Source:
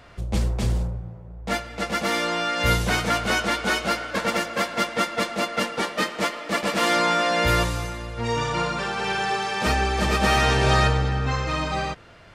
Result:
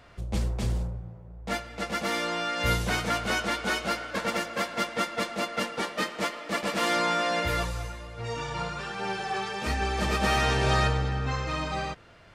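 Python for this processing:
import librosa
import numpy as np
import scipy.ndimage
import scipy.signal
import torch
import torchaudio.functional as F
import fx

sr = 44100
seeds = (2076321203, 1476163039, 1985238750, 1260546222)

y = fx.chorus_voices(x, sr, voices=4, hz=1.2, base_ms=13, depth_ms=3.0, mix_pct=40, at=(7.39, 9.8), fade=0.02)
y = y * librosa.db_to_amplitude(-5.0)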